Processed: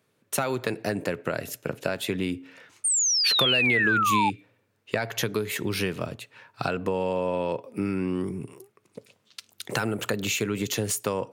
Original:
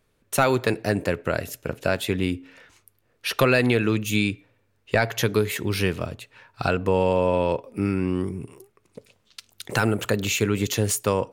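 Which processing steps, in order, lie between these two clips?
HPF 110 Hz 24 dB/oct; compressor 6:1, threshold -23 dBFS, peak gain reduction 9.5 dB; painted sound fall, 2.84–4.3, 820–9100 Hz -23 dBFS

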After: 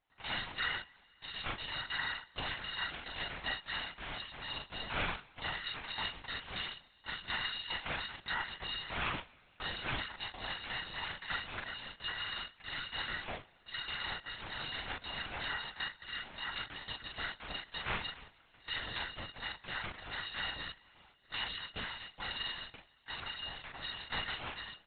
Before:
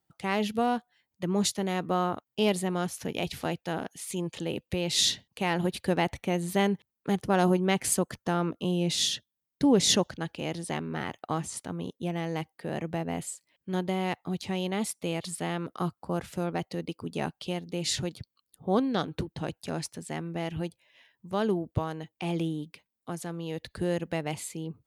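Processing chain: FFT order left unsorted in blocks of 256 samples; HPF 260 Hz 12 dB/oct; harmoniser -5 st -5 dB, -4 st -15 dB, -3 st -14 dB; compressor 12:1, threshold -27 dBFS, peak gain reduction 12.5 dB; pitch shift -6.5 st; LPF 2800 Hz 12 dB/oct; doubler 40 ms -3 dB; two-slope reverb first 0.39 s, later 3.3 s, from -17 dB, DRR 14.5 dB; LPC vocoder at 8 kHz whisper; gain +1.5 dB

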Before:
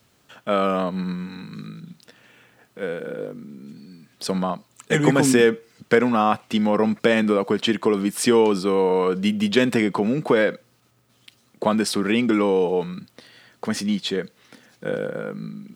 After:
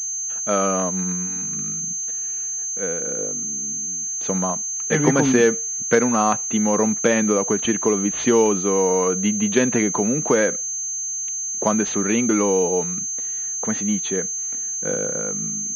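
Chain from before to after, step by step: pulse-width modulation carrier 6300 Hz

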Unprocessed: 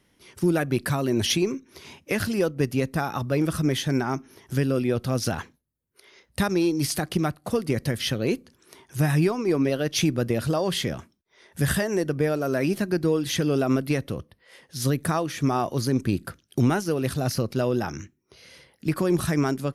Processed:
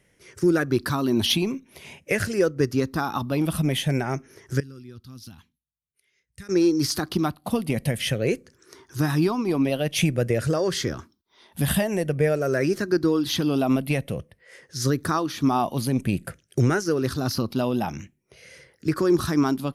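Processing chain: moving spectral ripple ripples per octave 0.51, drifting -0.49 Hz, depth 9 dB; 4.6–6.49 passive tone stack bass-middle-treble 6-0-2

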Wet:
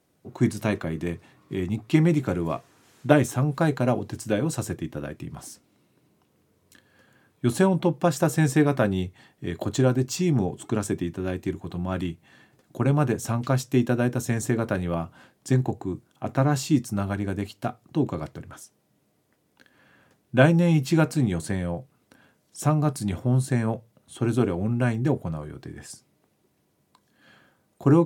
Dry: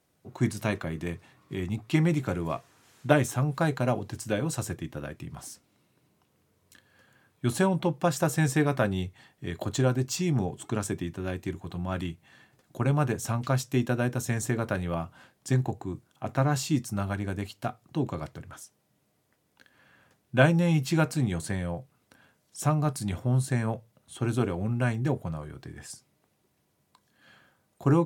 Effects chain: bell 300 Hz +5 dB 1.8 oct; gain +1 dB

